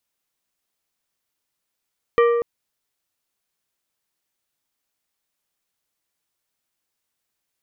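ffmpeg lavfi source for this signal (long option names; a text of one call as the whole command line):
ffmpeg -f lavfi -i "aevalsrc='0.266*pow(10,-3*t/1.77)*sin(2*PI*471*t)+0.133*pow(10,-3*t/0.932)*sin(2*PI*1177.5*t)+0.0668*pow(10,-3*t/0.671)*sin(2*PI*1884*t)+0.0335*pow(10,-3*t/0.574)*sin(2*PI*2355*t)+0.0168*pow(10,-3*t/0.477)*sin(2*PI*3061.5*t)':duration=0.24:sample_rate=44100" out.wav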